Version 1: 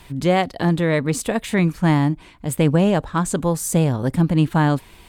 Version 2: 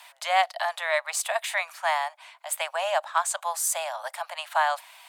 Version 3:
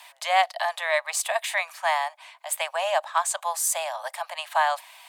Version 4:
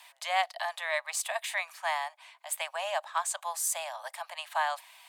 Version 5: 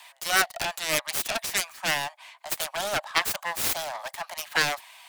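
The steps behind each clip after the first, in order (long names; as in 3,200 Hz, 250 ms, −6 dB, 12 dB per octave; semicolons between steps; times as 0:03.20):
Butterworth high-pass 610 Hz 96 dB per octave
notch filter 1,400 Hz, Q 9.1; level +1.5 dB
high-pass filter 660 Hz 6 dB per octave; level −5.5 dB
phase distortion by the signal itself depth 0.71 ms; level +6 dB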